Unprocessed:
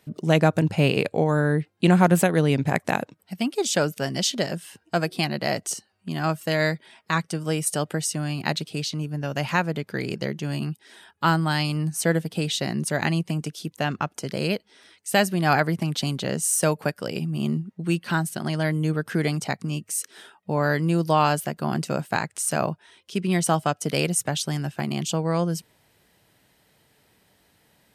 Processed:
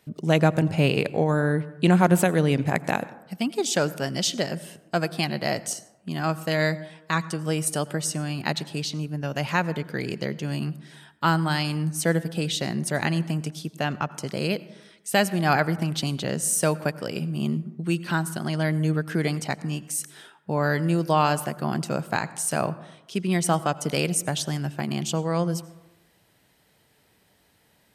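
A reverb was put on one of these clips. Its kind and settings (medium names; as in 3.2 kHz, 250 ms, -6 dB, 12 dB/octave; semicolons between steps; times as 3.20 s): plate-style reverb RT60 1 s, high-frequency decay 0.35×, pre-delay 75 ms, DRR 17.5 dB; trim -1 dB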